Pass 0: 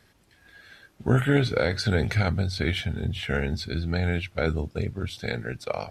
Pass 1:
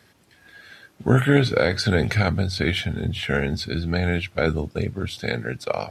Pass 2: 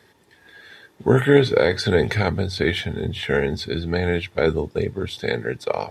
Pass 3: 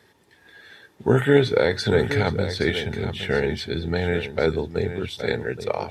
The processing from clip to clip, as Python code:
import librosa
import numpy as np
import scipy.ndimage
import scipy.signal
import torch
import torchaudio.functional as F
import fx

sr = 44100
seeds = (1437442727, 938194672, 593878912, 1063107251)

y1 = scipy.signal.sosfilt(scipy.signal.butter(2, 92.0, 'highpass', fs=sr, output='sos'), x)
y1 = y1 * librosa.db_to_amplitude(4.5)
y2 = fx.small_body(y1, sr, hz=(420.0, 890.0, 1800.0, 3500.0), ring_ms=20, db=9)
y2 = y2 * librosa.db_to_amplitude(-2.0)
y3 = y2 + 10.0 ** (-10.5 / 20.0) * np.pad(y2, (int(819 * sr / 1000.0), 0))[:len(y2)]
y3 = y3 * librosa.db_to_amplitude(-2.0)